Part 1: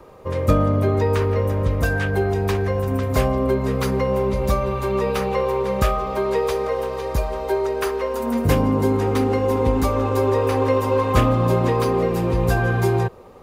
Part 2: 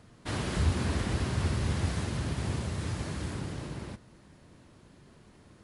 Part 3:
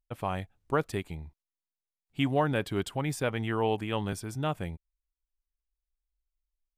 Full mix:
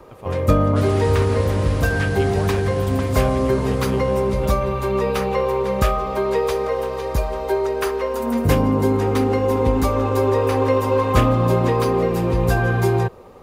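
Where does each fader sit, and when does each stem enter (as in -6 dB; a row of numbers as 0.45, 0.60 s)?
+1.0, +2.5, -4.5 dB; 0.00, 0.50, 0.00 s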